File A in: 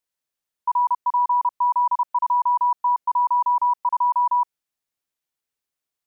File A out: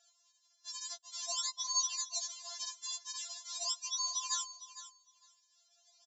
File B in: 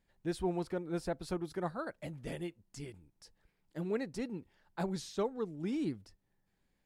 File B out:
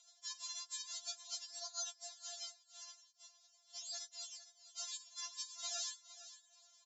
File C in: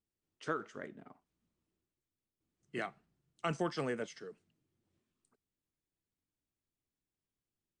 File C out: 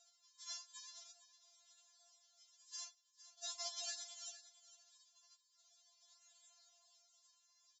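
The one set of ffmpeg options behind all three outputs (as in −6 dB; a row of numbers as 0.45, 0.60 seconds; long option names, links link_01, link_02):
-filter_complex "[0:a]afftfilt=real='hypot(re,im)*cos(2*PI*random(0))':imag='hypot(re,im)*sin(2*PI*random(1))':win_size=512:overlap=0.75,highshelf=frequency=5300:gain=-2.5,acompressor=threshold=-31dB:ratio=16,alimiter=level_in=9dB:limit=-24dB:level=0:latency=1:release=36,volume=-9dB,acompressor=mode=upward:threshold=-45dB:ratio=2.5,acrusher=samples=39:mix=1:aa=0.000001:lfo=1:lforange=62.4:lforate=0.43,aexciter=amount=14.6:drive=3.7:freq=3500,aphaser=in_gain=1:out_gain=1:delay=4.7:decay=0.25:speed=1.9:type=sinusoidal,afftfilt=real='re*between(b*sr/4096,420,7600)':imag='im*between(b*sr/4096,420,7600)':win_size=4096:overlap=0.75,asplit=2[link_01][link_02];[link_02]aecho=0:1:457|914:0.2|0.0319[link_03];[link_01][link_03]amix=inputs=2:normalize=0,afftfilt=real='re*4*eq(mod(b,16),0)':imag='im*4*eq(mod(b,16),0)':win_size=2048:overlap=0.75,volume=-5dB"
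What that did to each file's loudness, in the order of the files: −15.0, −6.0, −7.0 LU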